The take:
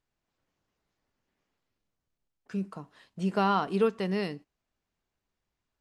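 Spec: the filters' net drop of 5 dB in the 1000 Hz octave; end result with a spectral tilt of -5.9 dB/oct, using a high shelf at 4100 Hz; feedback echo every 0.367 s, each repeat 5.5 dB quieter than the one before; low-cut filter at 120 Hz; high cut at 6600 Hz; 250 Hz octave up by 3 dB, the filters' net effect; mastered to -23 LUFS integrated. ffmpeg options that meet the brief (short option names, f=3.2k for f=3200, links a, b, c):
-af "highpass=120,lowpass=6.6k,equalizer=f=250:t=o:g=5.5,equalizer=f=1k:t=o:g=-7.5,highshelf=f=4.1k:g=6,aecho=1:1:367|734|1101|1468|1835|2202|2569:0.531|0.281|0.149|0.079|0.0419|0.0222|0.0118,volume=6.5dB"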